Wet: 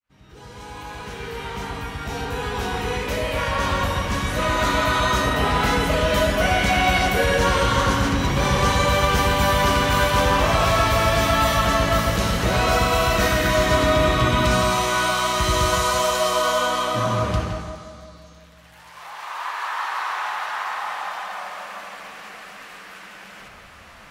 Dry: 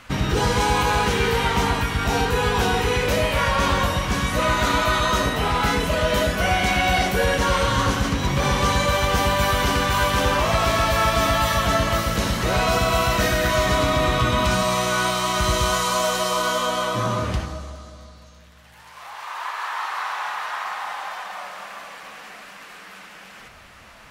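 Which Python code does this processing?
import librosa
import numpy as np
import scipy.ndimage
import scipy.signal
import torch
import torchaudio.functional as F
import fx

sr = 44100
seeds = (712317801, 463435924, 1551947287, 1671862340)

y = fx.fade_in_head(x, sr, length_s=5.58)
y = fx.echo_wet_lowpass(y, sr, ms=165, feedback_pct=35, hz=2900.0, wet_db=-4.5)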